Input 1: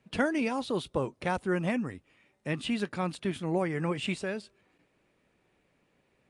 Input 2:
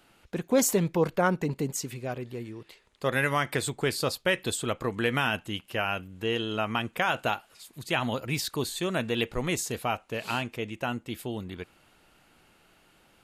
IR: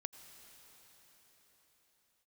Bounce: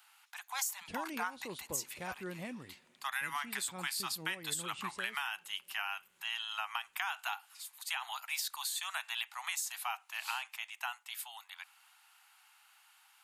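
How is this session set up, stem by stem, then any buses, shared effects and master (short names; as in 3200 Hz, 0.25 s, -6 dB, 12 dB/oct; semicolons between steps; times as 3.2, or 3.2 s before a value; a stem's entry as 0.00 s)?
-15.5 dB, 0.75 s, send -13 dB, high shelf 3500 Hz +9 dB
-2.5 dB, 0.00 s, no send, steep high-pass 780 Hz 72 dB/oct; high shelf 7200 Hz +8 dB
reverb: on, pre-delay 78 ms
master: compressor 10:1, threshold -33 dBFS, peak gain reduction 13 dB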